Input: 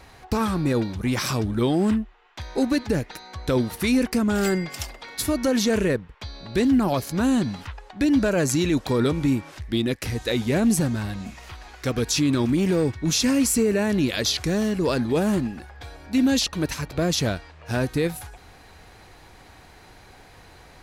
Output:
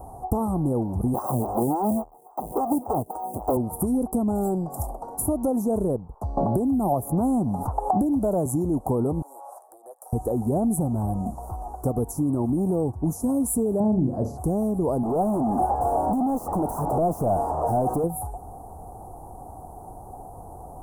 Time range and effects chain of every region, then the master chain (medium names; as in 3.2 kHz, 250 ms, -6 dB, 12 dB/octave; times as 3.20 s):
1.14–3.57 s: square wave that keeps the level + high-pass 160 Hz 6 dB/octave + lamp-driven phase shifter 3.6 Hz
6.37–8.46 s: treble shelf 12 kHz +5 dB + three bands compressed up and down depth 100%
9.22–10.13 s: steep high-pass 550 Hz + compression 10:1, threshold -42 dBFS
13.80–14.38 s: low-pass 5.2 kHz + peaking EQ 140 Hz +10 dB 1.9 oct + flutter echo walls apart 6.4 m, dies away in 0.29 s
15.03–18.04 s: compression 5:1, threshold -29 dBFS + overdrive pedal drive 35 dB, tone 2.1 kHz, clips at -20.5 dBFS
whole clip: compression 4:1, threshold -29 dBFS; Chebyshev band-stop 730–9400 Hz, order 3; high-order bell 970 Hz +9 dB 1.1 oct; trim +7.5 dB